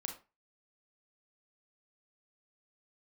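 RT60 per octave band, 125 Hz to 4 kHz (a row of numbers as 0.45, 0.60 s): 0.30, 0.30, 0.30, 0.30, 0.25, 0.20 s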